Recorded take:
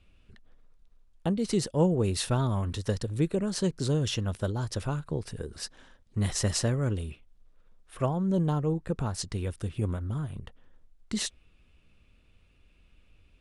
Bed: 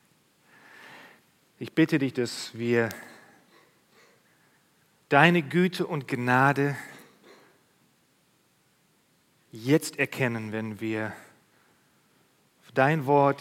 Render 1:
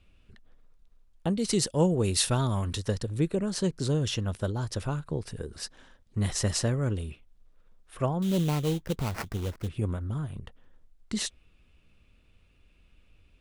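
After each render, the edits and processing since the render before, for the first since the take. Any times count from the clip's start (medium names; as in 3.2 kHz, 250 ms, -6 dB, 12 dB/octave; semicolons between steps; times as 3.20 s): 1.29–2.80 s: treble shelf 2.7 kHz +8 dB; 8.22–9.68 s: sample-rate reducer 3.5 kHz, jitter 20%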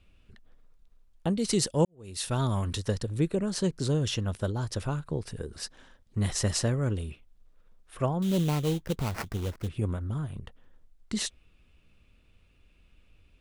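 1.85–2.43 s: fade in quadratic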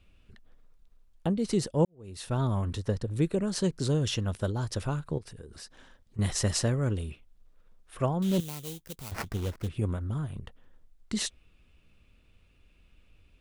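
1.27–3.11 s: treble shelf 2.1 kHz -10 dB; 5.18–6.19 s: compression 3:1, threshold -44 dBFS; 8.40–9.12 s: pre-emphasis filter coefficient 0.8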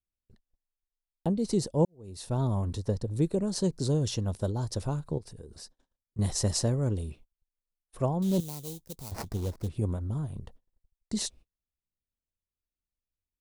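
gate -49 dBFS, range -34 dB; high-order bell 2 kHz -9 dB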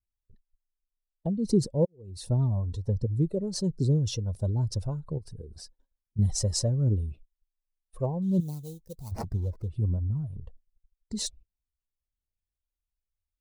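spectral contrast enhancement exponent 1.5; phaser 1.3 Hz, delay 2.4 ms, feedback 44%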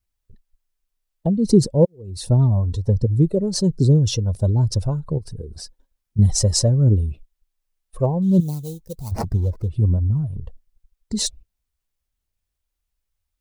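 trim +9.5 dB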